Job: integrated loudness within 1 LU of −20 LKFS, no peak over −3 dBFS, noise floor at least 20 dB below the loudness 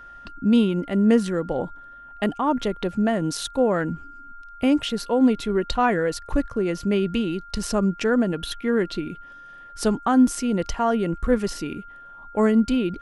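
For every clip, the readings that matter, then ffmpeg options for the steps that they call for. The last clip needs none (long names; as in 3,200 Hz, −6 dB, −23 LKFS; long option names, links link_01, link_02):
interfering tone 1,400 Hz; level of the tone −41 dBFS; integrated loudness −23.0 LKFS; sample peak −6.5 dBFS; target loudness −20.0 LKFS
→ -af "bandreject=frequency=1400:width=30"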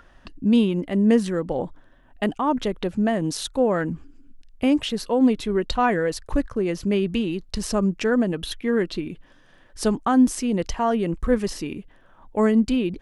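interfering tone none found; integrated loudness −23.0 LKFS; sample peak −6.5 dBFS; target loudness −20.0 LKFS
→ -af "volume=3dB"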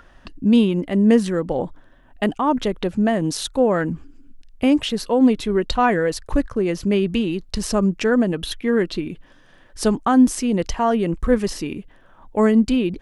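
integrated loudness −20.0 LKFS; sample peak −3.5 dBFS; background noise floor −51 dBFS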